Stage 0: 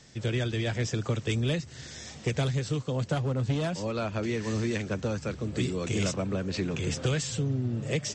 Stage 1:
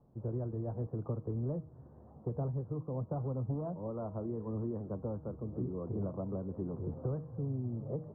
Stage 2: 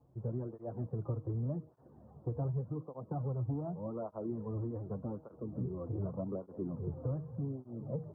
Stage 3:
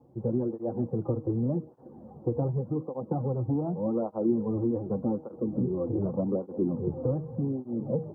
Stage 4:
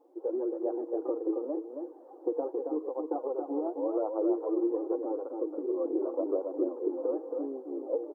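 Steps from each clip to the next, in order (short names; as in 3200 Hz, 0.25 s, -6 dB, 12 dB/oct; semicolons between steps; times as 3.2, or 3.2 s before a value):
steep low-pass 1100 Hz 48 dB/oct; de-hum 157.9 Hz, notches 34; gain -7.5 dB
tape flanging out of phase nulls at 0.85 Hz, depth 5.4 ms; gain +1.5 dB
small resonant body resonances 240/340/490/780 Hz, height 13 dB, ringing for 30 ms
brick-wall FIR high-pass 280 Hz; echo 0.273 s -5 dB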